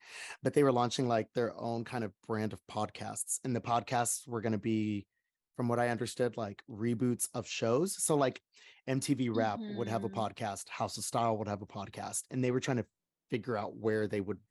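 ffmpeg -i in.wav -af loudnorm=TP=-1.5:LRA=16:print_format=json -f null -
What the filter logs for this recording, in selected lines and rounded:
"input_i" : "-34.5",
"input_tp" : "-14.5",
"input_lra" : "2.5",
"input_thresh" : "-44.8",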